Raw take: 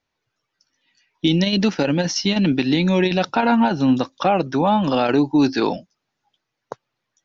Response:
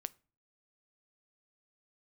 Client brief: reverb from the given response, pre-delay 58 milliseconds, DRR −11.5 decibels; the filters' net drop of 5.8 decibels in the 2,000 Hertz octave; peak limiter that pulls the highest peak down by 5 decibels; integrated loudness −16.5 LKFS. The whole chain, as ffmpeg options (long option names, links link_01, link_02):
-filter_complex "[0:a]equalizer=frequency=2000:width_type=o:gain=-8.5,alimiter=limit=-12.5dB:level=0:latency=1,asplit=2[link_01][link_02];[1:a]atrim=start_sample=2205,adelay=58[link_03];[link_02][link_03]afir=irnorm=-1:irlink=0,volume=14dB[link_04];[link_01][link_04]amix=inputs=2:normalize=0,volume=-6dB"